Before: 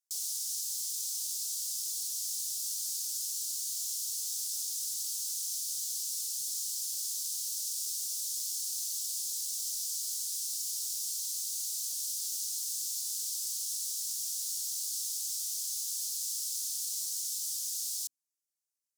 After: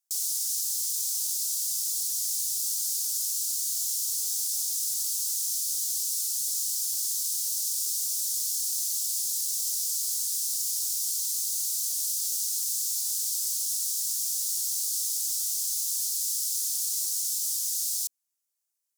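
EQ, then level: high-pass 290 Hz 12 dB/octave; treble shelf 7 kHz +7 dB; band-stop 470 Hz, Q 12; +2.0 dB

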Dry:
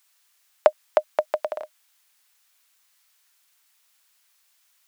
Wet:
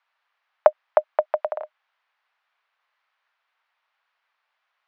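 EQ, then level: high-pass 530 Hz; band-pass filter 820 Hz, Q 0.67; distance through air 260 m; +5.0 dB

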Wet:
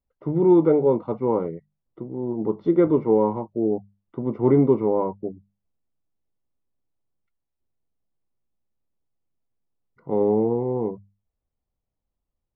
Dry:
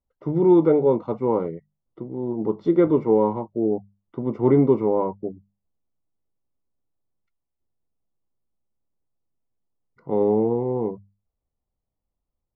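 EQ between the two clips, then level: distance through air 190 m; 0.0 dB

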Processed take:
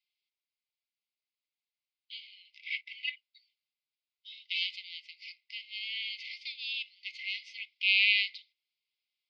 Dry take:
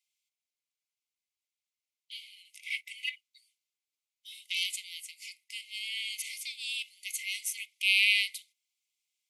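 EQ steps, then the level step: Chebyshev band-pass 2–5 kHz, order 4; 0.0 dB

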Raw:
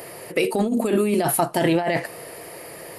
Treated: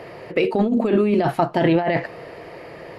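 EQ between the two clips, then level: distance through air 220 m; bass shelf 74 Hz +6 dB; +2.5 dB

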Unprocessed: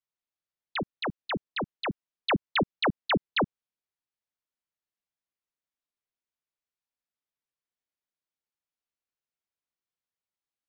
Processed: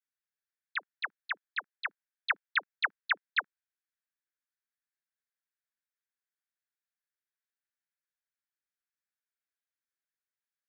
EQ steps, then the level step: resonant high-pass 1.6 kHz, resonance Q 4.1; band-stop 2.9 kHz, Q 7.7; -7.5 dB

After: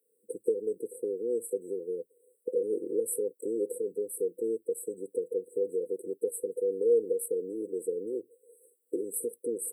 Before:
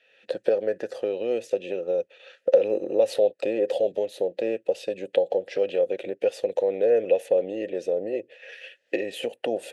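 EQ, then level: brick-wall FIR band-stop 500–7700 Hz; RIAA curve recording; +1.0 dB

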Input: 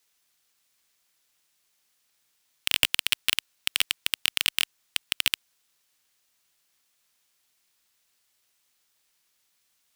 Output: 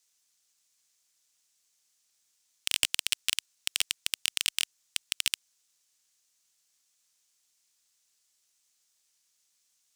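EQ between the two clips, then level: peaking EQ 6.8 kHz +12.5 dB 1.4 oct; -9.0 dB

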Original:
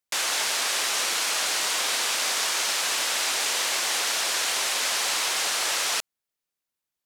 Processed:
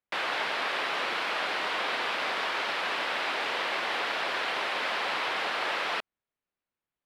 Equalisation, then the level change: distance through air 420 m; +3.0 dB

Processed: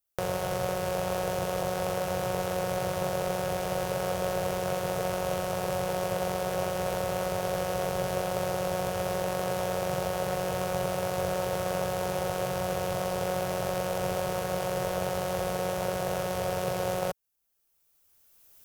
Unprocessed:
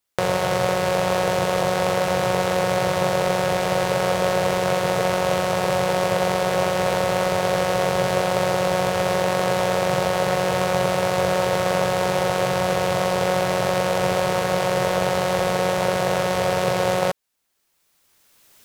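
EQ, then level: ten-band graphic EQ 125 Hz -6 dB, 250 Hz -10 dB, 500 Hz -5 dB, 1 kHz -8 dB, 2 kHz -10 dB, 4 kHz -9 dB, 8 kHz -6 dB; 0.0 dB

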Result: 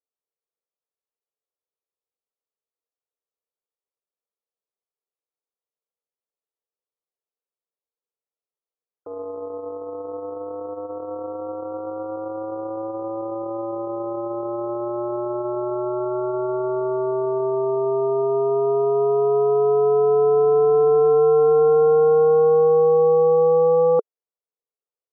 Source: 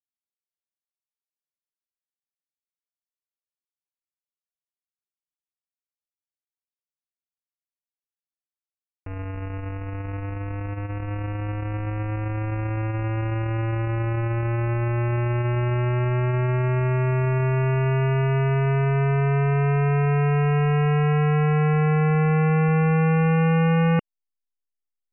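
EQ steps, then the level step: resonant high-pass 450 Hz, resonance Q 4.9; brick-wall FIR low-pass 1.4 kHz; 0.0 dB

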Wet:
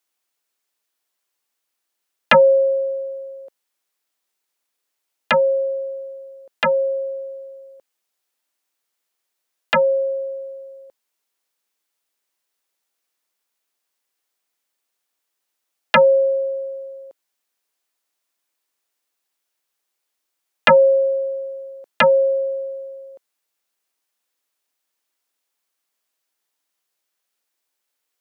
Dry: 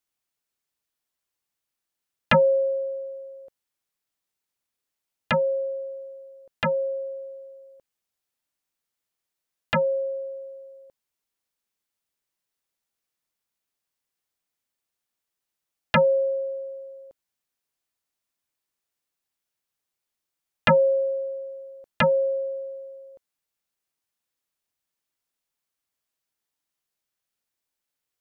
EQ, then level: high-pass 310 Hz 12 dB/octave; +7.0 dB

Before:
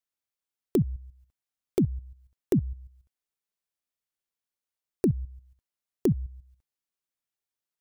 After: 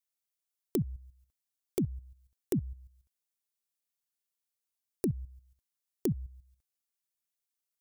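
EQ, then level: treble shelf 3.8 kHz +11 dB; -7.0 dB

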